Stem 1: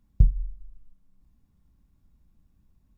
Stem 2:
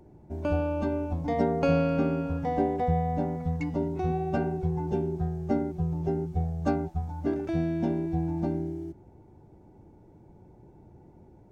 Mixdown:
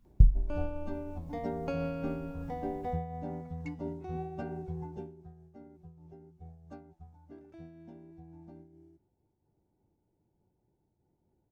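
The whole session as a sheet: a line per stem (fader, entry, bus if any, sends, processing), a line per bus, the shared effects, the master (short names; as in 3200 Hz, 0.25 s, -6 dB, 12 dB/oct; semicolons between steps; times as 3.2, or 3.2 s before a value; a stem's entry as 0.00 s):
+1.5 dB, 0.00 s, no send, AGC gain up to 12.5 dB
4.86 s -7.5 dB -> 5.28 s -20 dB, 0.05 s, no send, dry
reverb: off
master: noise-modulated level, depth 60%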